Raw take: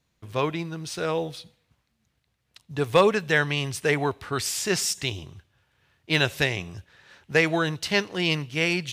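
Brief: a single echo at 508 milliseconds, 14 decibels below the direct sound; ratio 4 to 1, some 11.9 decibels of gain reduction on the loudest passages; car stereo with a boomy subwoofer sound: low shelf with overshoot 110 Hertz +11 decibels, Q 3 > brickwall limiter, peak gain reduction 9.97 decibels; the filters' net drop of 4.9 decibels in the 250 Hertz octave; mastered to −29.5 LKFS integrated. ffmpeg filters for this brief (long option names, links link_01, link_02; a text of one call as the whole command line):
ffmpeg -i in.wav -af "equalizer=frequency=250:width_type=o:gain=-3.5,acompressor=threshold=-29dB:ratio=4,lowshelf=frequency=110:width_type=q:width=3:gain=11,aecho=1:1:508:0.2,volume=6.5dB,alimiter=limit=-19dB:level=0:latency=1" out.wav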